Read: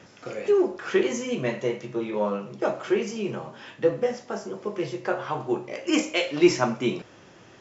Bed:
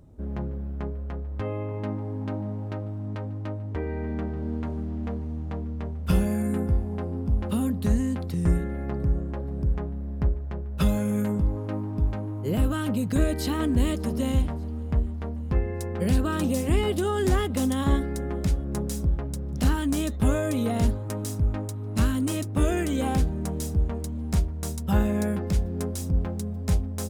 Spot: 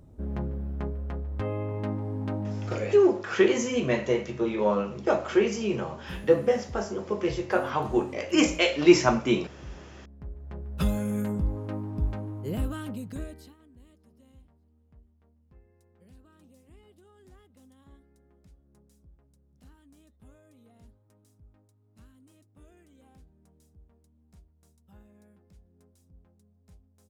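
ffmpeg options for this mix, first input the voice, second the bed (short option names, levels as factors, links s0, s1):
-filter_complex "[0:a]adelay=2450,volume=1.19[s0];[1:a]volume=4.73,afade=t=out:st=2.71:d=0.39:silence=0.141254,afade=t=in:st=10.26:d=0.44:silence=0.199526,afade=t=out:st=12.23:d=1.33:silence=0.0354813[s1];[s0][s1]amix=inputs=2:normalize=0"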